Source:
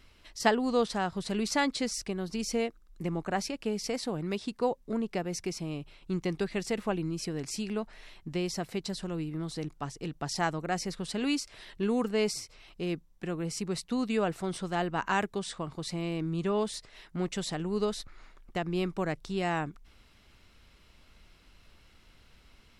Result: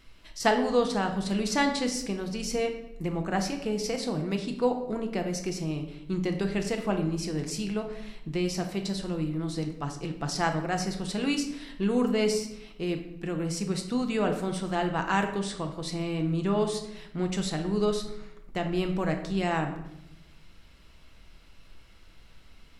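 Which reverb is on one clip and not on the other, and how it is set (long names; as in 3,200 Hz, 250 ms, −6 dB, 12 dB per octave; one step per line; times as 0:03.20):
rectangular room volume 270 cubic metres, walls mixed, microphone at 0.69 metres
level +1 dB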